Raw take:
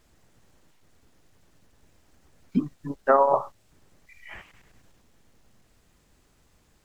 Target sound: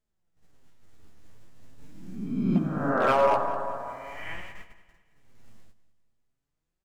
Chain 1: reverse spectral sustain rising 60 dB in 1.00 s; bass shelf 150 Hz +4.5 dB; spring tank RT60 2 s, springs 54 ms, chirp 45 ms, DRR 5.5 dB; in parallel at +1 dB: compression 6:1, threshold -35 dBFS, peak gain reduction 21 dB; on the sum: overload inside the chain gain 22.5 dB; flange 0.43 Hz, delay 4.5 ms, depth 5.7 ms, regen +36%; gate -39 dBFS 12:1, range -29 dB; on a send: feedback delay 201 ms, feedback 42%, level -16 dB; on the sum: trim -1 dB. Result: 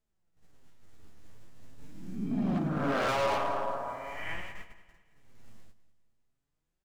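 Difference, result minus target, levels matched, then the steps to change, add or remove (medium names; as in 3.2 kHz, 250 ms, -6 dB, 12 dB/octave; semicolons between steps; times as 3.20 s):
overload inside the chain: distortion +11 dB
change: overload inside the chain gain 11.5 dB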